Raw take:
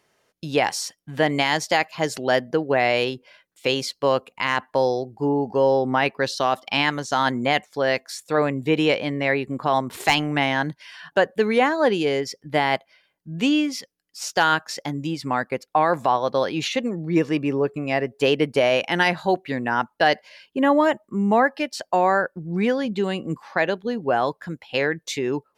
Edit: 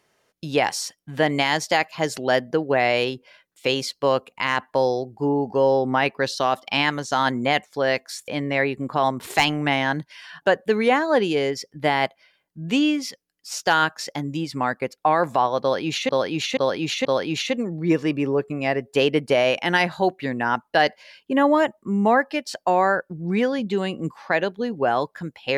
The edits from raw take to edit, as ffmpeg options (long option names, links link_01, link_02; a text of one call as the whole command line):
ffmpeg -i in.wav -filter_complex "[0:a]asplit=5[link_01][link_02][link_03][link_04][link_05];[link_01]atrim=end=8.282[link_06];[link_02]atrim=start=8.978:end=16.792[link_07];[link_03]atrim=start=16.308:end=16.792[link_08];[link_04]atrim=start=16.308:end=16.792[link_09];[link_05]atrim=start=16.308[link_10];[link_06][link_07]acrossfade=duration=0.004:curve1=hsin:curve2=hsin[link_11];[link_11][link_08]acrossfade=duration=0.004:curve1=hsin:curve2=hsin[link_12];[link_12][link_09]acrossfade=duration=0.004:curve1=hsin:curve2=hsin[link_13];[link_13][link_10]acrossfade=duration=0.004:curve1=hsin:curve2=hsin" out.wav